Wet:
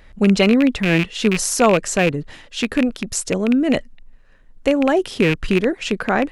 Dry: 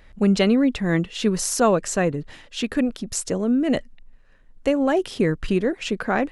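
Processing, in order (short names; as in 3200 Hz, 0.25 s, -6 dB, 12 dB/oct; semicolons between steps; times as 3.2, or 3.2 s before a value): rattling part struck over -26 dBFS, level -14 dBFS; gain +3.5 dB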